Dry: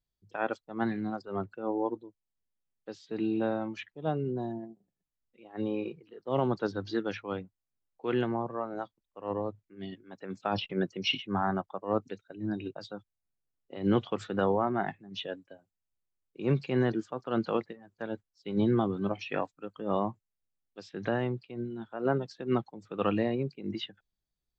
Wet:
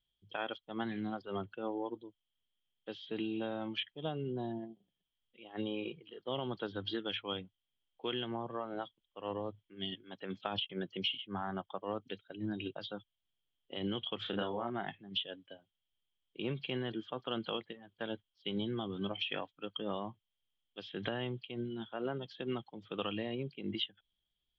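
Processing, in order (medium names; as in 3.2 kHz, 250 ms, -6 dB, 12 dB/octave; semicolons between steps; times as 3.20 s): four-pole ladder low-pass 3.3 kHz, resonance 90%; compression 16:1, threshold -44 dBFS, peak gain reduction 20.5 dB; 14.22–14.70 s: doubling 34 ms -5 dB; trim +11 dB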